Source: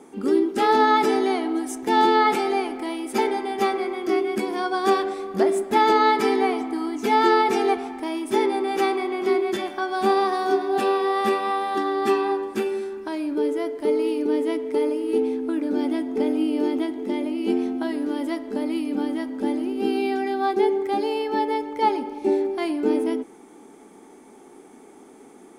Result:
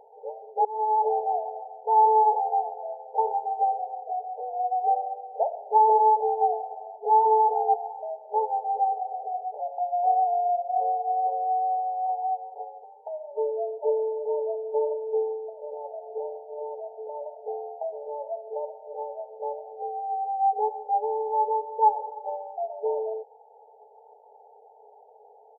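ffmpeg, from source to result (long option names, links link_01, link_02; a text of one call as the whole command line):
ffmpeg -i in.wav -filter_complex "[0:a]asettb=1/sr,asplit=3[link_01][link_02][link_03];[link_01]atrim=end=9.604[link_04];[link_02]atrim=start=9.6:end=12.84,asetpts=PTS-STARTPTS,afade=type=in:duration=0.004:curve=qsin,afade=type=out:start_time=3.236:duration=0.004:curve=qsin,afreqshift=-38[link_05];[link_03]atrim=start=12.836[link_06];[link_04][link_05]acrossfade=duration=0.004:curve1=hsin:curve2=qsin[link_07];[link_07][link_06]acrossfade=duration=0.004:curve1=qsin:curve2=hsin,asettb=1/sr,asplit=3[link_08][link_09][link_10];[link_08]atrim=end=15.494[link_11];[link_09]atrim=start=15.49:end=17.35,asetpts=PTS-STARTPTS,afade=type=in:duration=0.004:curve=qsin,afade=type=out:start_time=1.856:duration=0.004:curve=qsin,acompressor=threshold=-23dB:ratio=6:attack=3.2:release=140:knee=1:detection=peak[link_12];[link_10]atrim=start=17.346[link_13];[link_11][link_12]acrossfade=duration=0.004:curve1=hsin:curve2=qsin[link_14];[link_14][link_13]acrossfade=duration=0.004:curve1=qsin:curve2=hsin,asplit=2[link_15][link_16];[link_15]atrim=end=0.65,asetpts=PTS-STARTPTS,afade=type=out:start_time=0.646:duration=0.004:curve=hsin[link_17];[link_16]atrim=start=0.65,asetpts=PTS-STARTPTS,afade=type=in:duration=0.44[link_18];[link_17][link_18]concat=n=2:v=0:a=1,aecho=1:1:1.4:0.39,afftfilt=real='re*between(b*sr/4096,410,930)':imag='im*between(b*sr/4096,410,930)':win_size=4096:overlap=0.75" out.wav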